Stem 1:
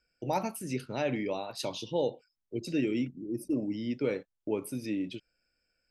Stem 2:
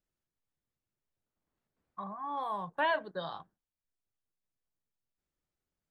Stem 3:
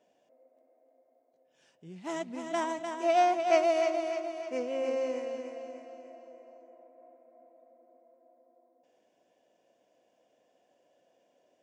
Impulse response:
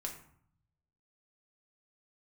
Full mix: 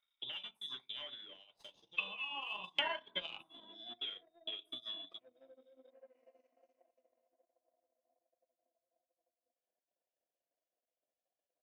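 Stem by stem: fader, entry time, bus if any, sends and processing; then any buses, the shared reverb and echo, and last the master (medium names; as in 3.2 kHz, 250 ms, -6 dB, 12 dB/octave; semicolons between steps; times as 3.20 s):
-9.0 dB, 0.00 s, bus A, send -13.5 dB, saturation -30.5 dBFS, distortion -10 dB; auto duck -17 dB, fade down 1.00 s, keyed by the second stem
+3.0 dB, 0.00 s, bus A, send -12.5 dB, none
-19.5 dB, 0.70 s, no bus, no send, low-pass that closes with the level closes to 370 Hz, closed at -28 dBFS; flange 1.3 Hz, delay 4.8 ms, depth 8.8 ms, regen -9%; saturation -31 dBFS, distortion -19 dB
bus A: 0.0 dB, frequency inversion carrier 3.7 kHz; compression, threshold -40 dBFS, peak gain reduction 16.5 dB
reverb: on, RT60 0.60 s, pre-delay 5 ms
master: transient shaper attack +10 dB, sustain -12 dB; bass shelf 240 Hz -12 dB; harmonic tremolo 3.8 Hz, depth 50%, crossover 2.2 kHz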